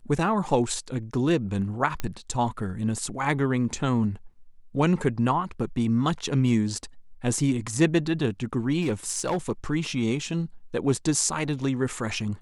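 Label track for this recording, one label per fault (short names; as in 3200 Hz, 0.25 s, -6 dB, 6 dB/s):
2.000000	2.000000	pop -15 dBFS
8.810000	9.370000	clipped -20.5 dBFS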